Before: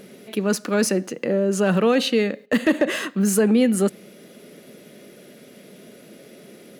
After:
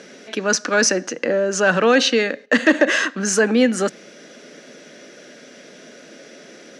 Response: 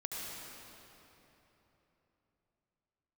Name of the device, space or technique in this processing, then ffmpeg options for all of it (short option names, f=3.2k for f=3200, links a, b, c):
television speaker: -af "highpass=f=180:w=0.5412,highpass=f=180:w=1.3066,equalizer=f=200:t=q:w=4:g=-10,equalizer=f=390:t=q:w=4:g=-6,equalizer=f=1.6k:t=q:w=4:g=8,equalizer=f=5.8k:t=q:w=4:g=9,lowpass=f=7.4k:w=0.5412,lowpass=f=7.4k:w=1.3066,volume=5dB"